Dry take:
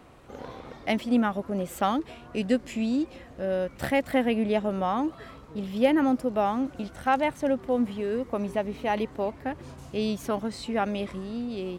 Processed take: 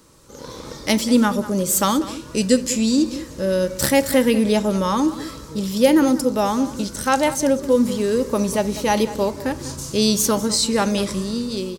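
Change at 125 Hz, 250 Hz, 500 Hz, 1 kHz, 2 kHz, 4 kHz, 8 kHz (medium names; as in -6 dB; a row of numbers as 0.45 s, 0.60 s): +9.5 dB, +8.0 dB, +8.0 dB, +5.0 dB, +6.5 dB, +14.5 dB, no reading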